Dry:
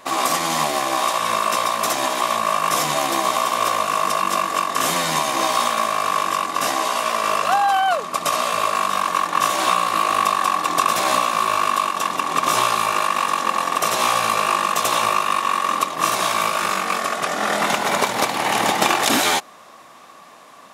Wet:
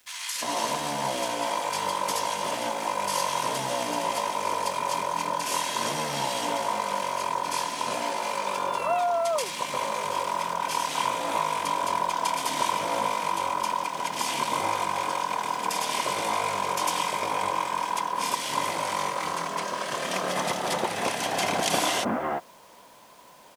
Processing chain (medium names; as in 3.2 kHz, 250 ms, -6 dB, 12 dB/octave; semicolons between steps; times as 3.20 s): bands offset in time highs, lows 310 ms, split 1.8 kHz; tape speed -12%; word length cut 8-bit, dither none; trim -7 dB